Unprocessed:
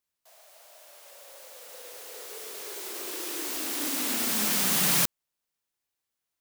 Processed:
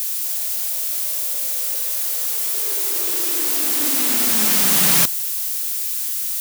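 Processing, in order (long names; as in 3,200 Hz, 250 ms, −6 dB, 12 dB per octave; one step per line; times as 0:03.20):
spike at every zero crossing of −26 dBFS
0:01.77–0:02.54: inverse Chebyshev high-pass filter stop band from 270 Hz, stop band 40 dB
level +6.5 dB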